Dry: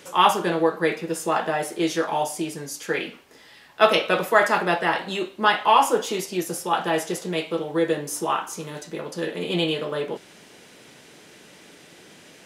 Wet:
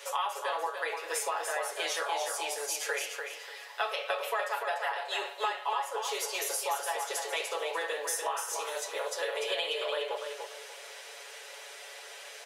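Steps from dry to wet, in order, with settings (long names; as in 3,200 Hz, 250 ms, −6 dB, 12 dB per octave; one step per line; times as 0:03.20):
Butterworth high-pass 470 Hz 48 dB per octave
comb filter 7.1 ms, depth 95%
downward compressor 10 to 1, threshold −30 dBFS, peak gain reduction 21.5 dB
on a send: repeating echo 294 ms, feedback 27%, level −6 dB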